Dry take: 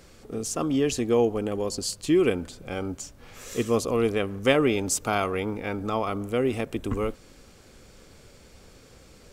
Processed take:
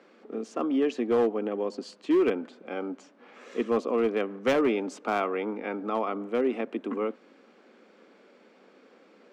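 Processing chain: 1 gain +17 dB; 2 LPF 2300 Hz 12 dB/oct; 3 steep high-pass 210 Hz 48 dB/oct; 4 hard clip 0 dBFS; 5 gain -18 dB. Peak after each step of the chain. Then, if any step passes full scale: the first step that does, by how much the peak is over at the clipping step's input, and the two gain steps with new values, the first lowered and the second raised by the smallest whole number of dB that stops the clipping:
+11.0, +9.5, +8.5, 0.0, -18.0 dBFS; step 1, 8.5 dB; step 1 +8 dB, step 5 -9 dB

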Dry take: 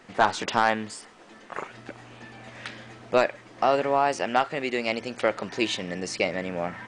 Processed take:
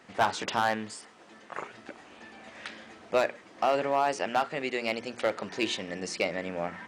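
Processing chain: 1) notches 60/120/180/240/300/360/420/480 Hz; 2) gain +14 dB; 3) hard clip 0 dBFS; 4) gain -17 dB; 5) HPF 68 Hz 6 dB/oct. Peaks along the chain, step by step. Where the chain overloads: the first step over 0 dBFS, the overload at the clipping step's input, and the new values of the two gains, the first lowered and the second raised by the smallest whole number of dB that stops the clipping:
-7.5, +6.5, 0.0, -17.0, -15.0 dBFS; step 2, 6.5 dB; step 2 +7 dB, step 4 -10 dB

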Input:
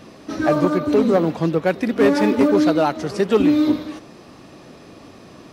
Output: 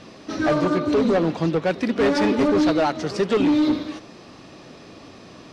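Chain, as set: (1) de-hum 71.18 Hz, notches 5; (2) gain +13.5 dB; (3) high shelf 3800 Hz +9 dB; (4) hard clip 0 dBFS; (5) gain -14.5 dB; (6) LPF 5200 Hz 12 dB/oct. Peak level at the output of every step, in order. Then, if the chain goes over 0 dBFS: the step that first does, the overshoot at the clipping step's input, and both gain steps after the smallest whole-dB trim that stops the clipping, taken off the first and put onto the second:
-4.5, +9.0, +10.0, 0.0, -14.5, -14.0 dBFS; step 2, 10.0 dB; step 2 +3.5 dB, step 5 -4.5 dB

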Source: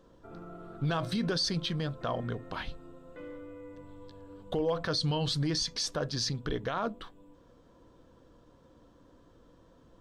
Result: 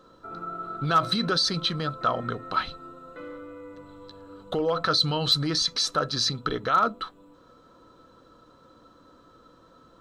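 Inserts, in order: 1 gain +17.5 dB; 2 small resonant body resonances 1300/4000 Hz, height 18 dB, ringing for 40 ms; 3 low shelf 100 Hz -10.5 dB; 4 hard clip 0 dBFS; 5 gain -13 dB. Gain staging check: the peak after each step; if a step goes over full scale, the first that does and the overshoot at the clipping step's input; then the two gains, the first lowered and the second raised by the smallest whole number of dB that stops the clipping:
-4.0, +3.5, +3.5, 0.0, -13.0 dBFS; step 2, 3.5 dB; step 1 +13.5 dB, step 5 -9 dB

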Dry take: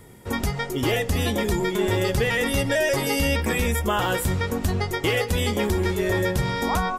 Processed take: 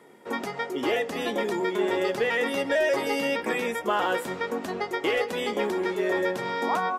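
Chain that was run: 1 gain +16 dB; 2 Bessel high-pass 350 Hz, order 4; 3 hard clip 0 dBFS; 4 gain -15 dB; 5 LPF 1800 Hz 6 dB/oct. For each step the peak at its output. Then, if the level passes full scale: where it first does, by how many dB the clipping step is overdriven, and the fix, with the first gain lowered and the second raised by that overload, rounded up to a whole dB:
+3.5, +5.0, 0.0, -15.0, -15.0 dBFS; step 1, 5.0 dB; step 1 +11 dB, step 4 -10 dB

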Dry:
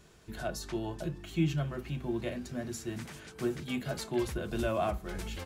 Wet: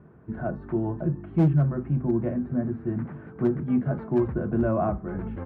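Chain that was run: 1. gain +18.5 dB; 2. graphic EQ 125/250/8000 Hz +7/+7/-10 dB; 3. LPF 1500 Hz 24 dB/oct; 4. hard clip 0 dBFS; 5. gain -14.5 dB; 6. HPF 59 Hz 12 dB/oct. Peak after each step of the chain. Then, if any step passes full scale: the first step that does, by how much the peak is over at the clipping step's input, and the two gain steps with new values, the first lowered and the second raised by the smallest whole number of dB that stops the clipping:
+1.0, +6.5, +6.5, 0.0, -14.5, -11.0 dBFS; step 1, 6.5 dB; step 1 +11.5 dB, step 5 -7.5 dB

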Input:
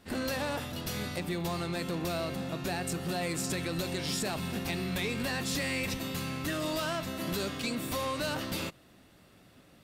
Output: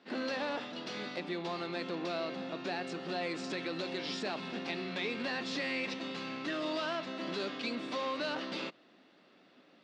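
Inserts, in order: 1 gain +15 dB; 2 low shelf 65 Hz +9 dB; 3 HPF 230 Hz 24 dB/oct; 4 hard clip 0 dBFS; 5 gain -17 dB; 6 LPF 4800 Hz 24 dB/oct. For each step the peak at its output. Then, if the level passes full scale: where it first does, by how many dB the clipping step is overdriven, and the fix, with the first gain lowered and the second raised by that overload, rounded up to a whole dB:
-9.0, -7.0, -5.0, -5.0, -22.0, -23.0 dBFS; no overload

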